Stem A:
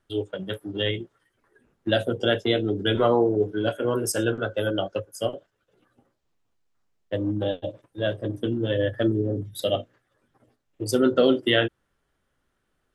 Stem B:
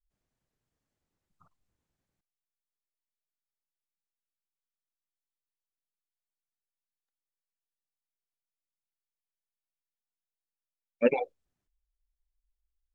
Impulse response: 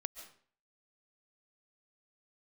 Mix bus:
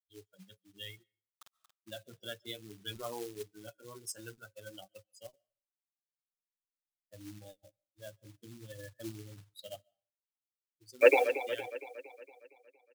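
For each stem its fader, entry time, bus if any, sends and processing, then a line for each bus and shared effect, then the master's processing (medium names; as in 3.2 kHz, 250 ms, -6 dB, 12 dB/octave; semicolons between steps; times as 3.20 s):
-18.5 dB, 0.00 s, send -23.5 dB, no echo send, expander on every frequency bin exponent 2; treble shelf 10 kHz -11 dB; short-mantissa float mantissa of 2-bit; auto duck -14 dB, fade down 0.40 s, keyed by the second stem
+1.5 dB, 0.00 s, send -12 dB, echo send -9.5 dB, Chebyshev high-pass 280 Hz, order 8; bit crusher 10-bit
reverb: on, RT60 0.50 s, pre-delay 100 ms
echo: feedback delay 231 ms, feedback 55%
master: treble shelf 2.3 kHz +12 dB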